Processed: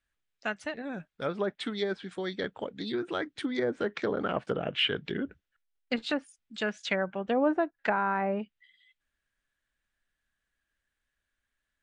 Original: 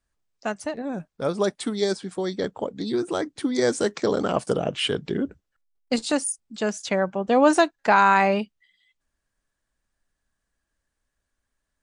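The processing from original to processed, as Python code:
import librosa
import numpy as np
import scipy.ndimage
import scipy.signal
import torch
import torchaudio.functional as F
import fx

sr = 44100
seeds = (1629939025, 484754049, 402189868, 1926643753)

y = fx.env_lowpass_down(x, sr, base_hz=760.0, full_db=-16.5)
y = fx.band_shelf(y, sr, hz=2300.0, db=9.0, octaves=1.7)
y = y * 10.0 ** (-7.5 / 20.0)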